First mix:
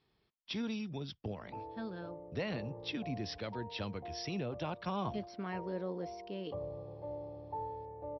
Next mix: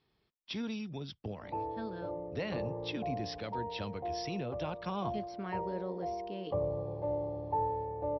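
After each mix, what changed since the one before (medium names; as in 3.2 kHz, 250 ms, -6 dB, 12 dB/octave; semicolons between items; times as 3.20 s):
background +8.5 dB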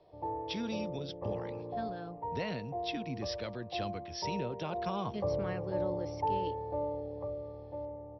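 speech: remove distance through air 63 m; background: entry -1.30 s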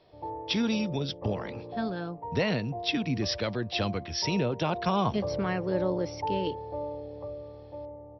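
speech +10.0 dB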